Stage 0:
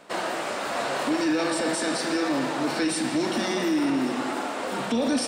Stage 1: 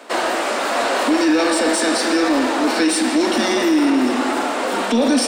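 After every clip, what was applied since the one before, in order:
Butterworth high-pass 210 Hz 72 dB per octave
in parallel at −6 dB: soft clipping −27.5 dBFS, distortion −10 dB
on the sum: level +6.5 dB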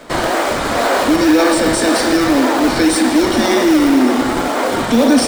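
notch filter 2,700 Hz, Q 11
in parallel at −5 dB: sample-and-hold swept by an LFO 30×, swing 160% 1.9 Hz
on the sum: level +1.5 dB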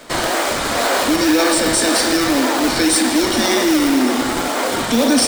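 high-shelf EQ 2,400 Hz +8.5 dB
level −4 dB

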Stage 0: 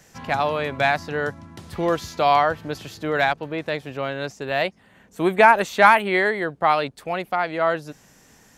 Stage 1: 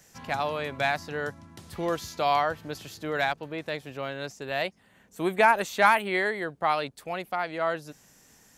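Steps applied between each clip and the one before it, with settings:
high-shelf EQ 4,900 Hz +7.5 dB
level −7 dB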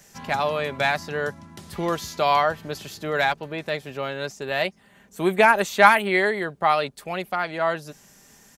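comb filter 5 ms, depth 33%
level +4.5 dB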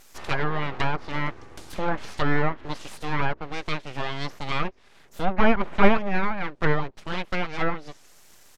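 full-wave rectification
tape wow and flutter 28 cents
treble cut that deepens with the level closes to 1,400 Hz, closed at −19 dBFS
level +2 dB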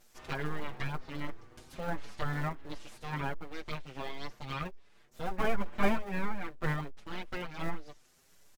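in parallel at −11 dB: sample-rate reduction 1,200 Hz, jitter 20%
on the sum: barber-pole flanger 6.4 ms +1.4 Hz
level −8 dB

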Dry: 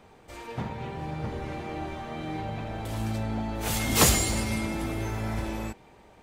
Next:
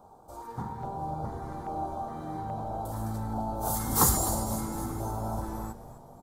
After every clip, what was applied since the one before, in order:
drawn EQ curve 450 Hz 0 dB, 810 Hz +10 dB, 1,400 Hz +1 dB, 2,600 Hz −22 dB, 3,900 Hz −8 dB, 12,000 Hz +6 dB
auto-filter notch square 1.2 Hz 630–1,900 Hz
echo with shifted repeats 255 ms, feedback 51%, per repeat −100 Hz, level −12.5 dB
level −3.5 dB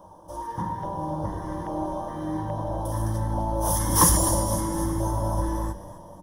EQ curve with evenly spaced ripples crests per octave 1.2, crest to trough 14 dB
in parallel at −3 dB: soft clipping −20 dBFS, distortion −13 dB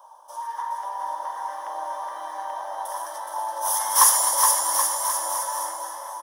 high-pass filter 800 Hz 24 dB per octave
on a send: bouncing-ball delay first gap 420 ms, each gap 0.85×, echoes 5
on the sum: level +3.5 dB

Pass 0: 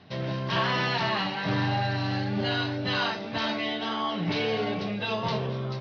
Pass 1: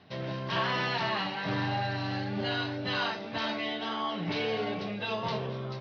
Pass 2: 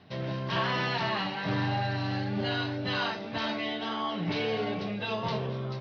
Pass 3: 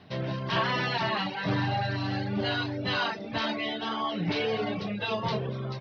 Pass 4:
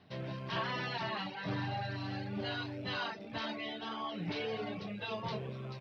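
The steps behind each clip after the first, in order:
bass and treble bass −3 dB, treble −2 dB; level −3 dB
low-shelf EQ 250 Hz +4 dB
reverb reduction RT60 0.68 s; level +3 dB
loose part that buzzes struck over −41 dBFS, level −40 dBFS; level −9 dB

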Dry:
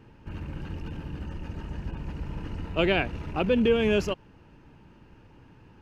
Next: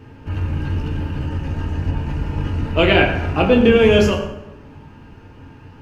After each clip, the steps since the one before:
convolution reverb RT60 1.0 s, pre-delay 5 ms, DRR −0.5 dB
level +8 dB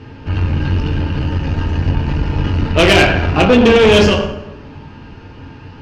low-pass with resonance 4,700 Hz, resonance Q 1.8
tube saturation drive 13 dB, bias 0.5
level +8.5 dB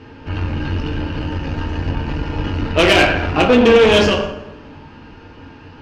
bass and treble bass −5 dB, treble −2 dB
coupled-rooms reverb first 0.27 s, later 1.9 s, from −27 dB, DRR 11 dB
level −1.5 dB

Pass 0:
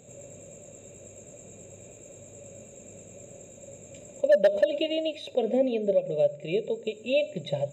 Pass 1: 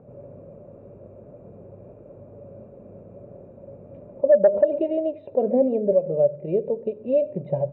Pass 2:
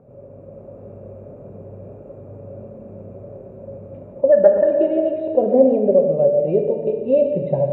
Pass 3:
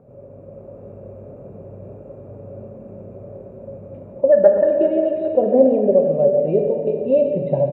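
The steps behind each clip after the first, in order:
Chebyshev low-pass filter 1,200 Hz, order 3; level +5.5 dB
automatic gain control gain up to 5.5 dB; dense smooth reverb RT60 2.1 s, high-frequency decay 0.85×, DRR 3 dB; level −1 dB
repeating echo 402 ms, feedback 57%, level −14 dB

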